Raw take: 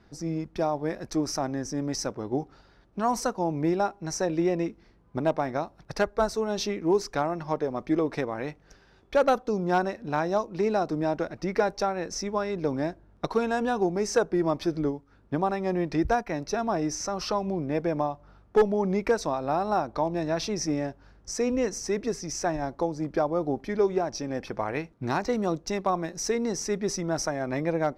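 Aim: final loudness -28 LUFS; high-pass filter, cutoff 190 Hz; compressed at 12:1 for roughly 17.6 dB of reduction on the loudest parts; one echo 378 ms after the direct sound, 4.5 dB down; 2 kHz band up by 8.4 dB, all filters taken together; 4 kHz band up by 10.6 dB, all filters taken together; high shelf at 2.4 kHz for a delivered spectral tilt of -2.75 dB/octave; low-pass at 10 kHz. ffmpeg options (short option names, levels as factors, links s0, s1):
-af "highpass=190,lowpass=10000,equalizer=f=2000:t=o:g=7,highshelf=f=2400:g=5.5,equalizer=f=4000:t=o:g=7.5,acompressor=threshold=0.0224:ratio=12,aecho=1:1:378:0.596,volume=2.66"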